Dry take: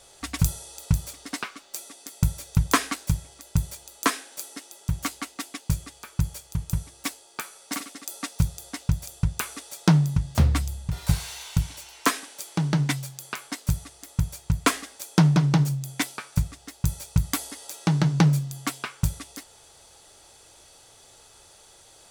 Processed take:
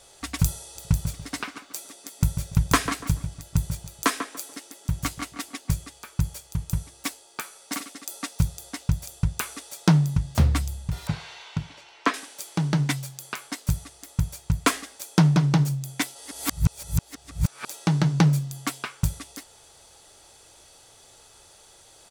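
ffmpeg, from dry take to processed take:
ffmpeg -i in.wav -filter_complex "[0:a]asplit=3[link_01][link_02][link_03];[link_01]afade=type=out:start_time=0.75:duration=0.02[link_04];[link_02]asplit=2[link_05][link_06];[link_06]adelay=144,lowpass=frequency=2000:poles=1,volume=-8dB,asplit=2[link_07][link_08];[link_08]adelay=144,lowpass=frequency=2000:poles=1,volume=0.28,asplit=2[link_09][link_10];[link_10]adelay=144,lowpass=frequency=2000:poles=1,volume=0.28[link_11];[link_05][link_07][link_09][link_11]amix=inputs=4:normalize=0,afade=type=in:start_time=0.75:duration=0.02,afade=type=out:start_time=5.74:duration=0.02[link_12];[link_03]afade=type=in:start_time=5.74:duration=0.02[link_13];[link_04][link_12][link_13]amix=inputs=3:normalize=0,asettb=1/sr,asplit=3[link_14][link_15][link_16];[link_14]atrim=end=11.074[link_17];[link_15]atrim=start=11.07:end=12.14,asetpts=PTS-STARTPTS,afade=type=in:duration=0.004:curve=qsin,afade=type=out:start_time=1.066:duration=0.004:curve=qsin,highpass=150,lowpass=3300[link_18];[link_16]atrim=start=12.136[link_19];[link_17][link_18]acrossfade=duration=0.004:curve1=hsin:curve2=qsin[link_20];[link_20][link_19]acrossfade=duration=0.004:curve1=qsin:curve2=hsin,asplit=3[link_21][link_22][link_23];[link_21]atrim=end=16.152[link_24];[link_22]atrim=start=16.148:end=17.682,asetpts=PTS-STARTPTS,areverse[link_25];[link_23]atrim=start=17.678[link_26];[link_24][link_25]acrossfade=duration=0.004:curve1=hsin:curve2=hsin[link_27];[link_27][link_26]acrossfade=duration=0.004:curve1=hsin:curve2=hsin" out.wav

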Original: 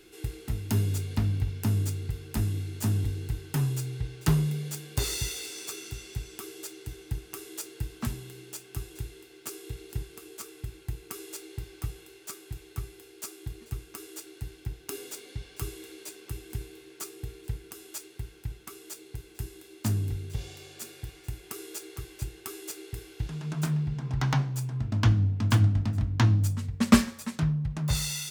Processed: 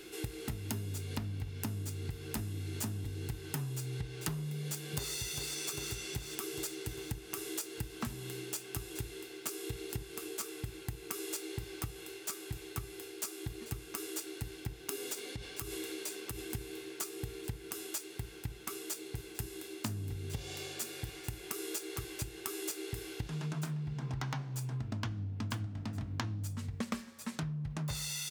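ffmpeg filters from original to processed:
ffmpeg -i in.wav -filter_complex "[0:a]asplit=2[link_01][link_02];[link_02]afade=type=in:start_time=4.53:duration=0.01,afade=type=out:start_time=5.14:duration=0.01,aecho=0:1:400|800|1200|1600|2000|2400|2800:0.334965|0.200979|0.120588|0.0723525|0.0434115|0.0260469|0.0156281[link_03];[link_01][link_03]amix=inputs=2:normalize=0,asettb=1/sr,asplit=3[link_04][link_05][link_06];[link_04]atrim=end=15.134[link_07];[link_05]atrim=start=15.13:end=16.39,asetpts=PTS-STARTPTS,afade=type=in:duration=0.004:curve=qsin,afade=type=out:start_time=1.256:duration=0.004:curve=qsin,acompressor=threshold=-38dB:ratio=6:attack=3.2:release=140:knee=1:detection=peak[link_08];[link_06]atrim=start=16.386[link_09];[link_07][link_08]acrossfade=duration=0.004:curve1=hsin:curve2=qsin[link_10];[link_10][link_09]acrossfade=duration=0.004:curve1=qsin:curve2=hsin,asettb=1/sr,asplit=3[link_11][link_12][link_13];[link_11]atrim=end=25.664[link_14];[link_12]atrim=start=25.66:end=26.25,asetpts=PTS-STARTPTS,afade=type=in:duration=0.004:curve=qsin,afade=type=out:start_time=0.586:duration=0.004:curve=qsin,lowshelf=frequency=64:gain=-11[link_15];[link_13]atrim=start=26.246[link_16];[link_14][link_15]acrossfade=duration=0.004:curve1=hsin:curve2=qsin[link_17];[link_17][link_16]acrossfade=duration=0.004:curve1=qsin:curve2=hsin,lowshelf=frequency=90:gain=-10,acompressor=threshold=-40dB:ratio=16,volume=5.5dB" out.wav

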